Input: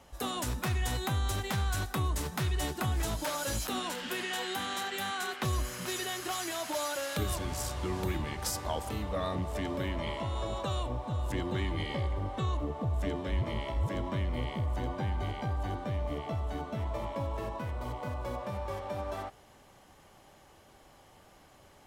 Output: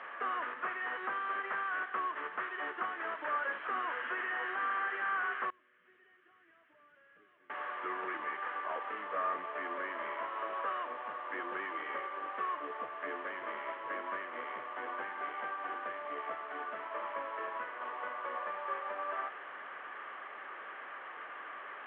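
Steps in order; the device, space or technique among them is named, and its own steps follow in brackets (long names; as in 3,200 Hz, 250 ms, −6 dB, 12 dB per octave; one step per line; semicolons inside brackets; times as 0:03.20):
digital answering machine (band-pass filter 390–3,200 Hz; linear delta modulator 16 kbit/s, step −42 dBFS; loudspeaker in its box 470–3,800 Hz, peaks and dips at 570 Hz −4 dB, 810 Hz −7 dB, 1,200 Hz +8 dB, 1,700 Hz +8 dB, 2,600 Hz −5 dB, 3,700 Hz −7 dB)
0:05.50–0:07.50: guitar amp tone stack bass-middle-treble 10-0-1
level +1 dB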